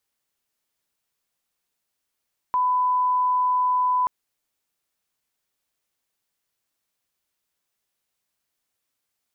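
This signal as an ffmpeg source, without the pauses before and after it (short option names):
-f lavfi -i "sine=f=1000:d=1.53:r=44100,volume=0.06dB"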